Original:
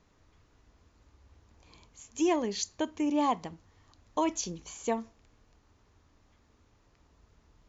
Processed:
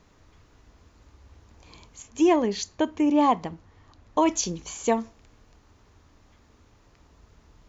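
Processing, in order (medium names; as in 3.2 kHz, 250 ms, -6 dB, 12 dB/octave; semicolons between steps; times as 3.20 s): 2.02–4.26 s: treble shelf 4.4 kHz -10.5 dB; trim +7.5 dB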